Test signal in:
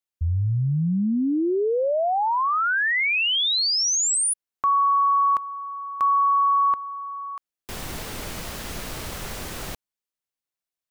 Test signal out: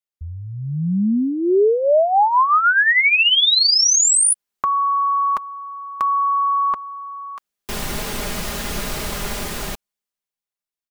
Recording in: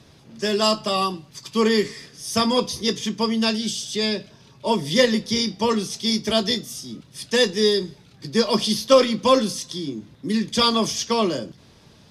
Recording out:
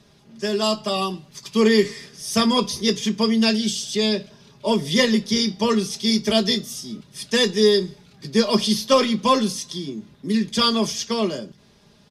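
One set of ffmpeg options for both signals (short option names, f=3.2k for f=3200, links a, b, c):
-af "aecho=1:1:4.9:0.47,dynaudnorm=f=110:g=21:m=10.5dB,volume=-4dB"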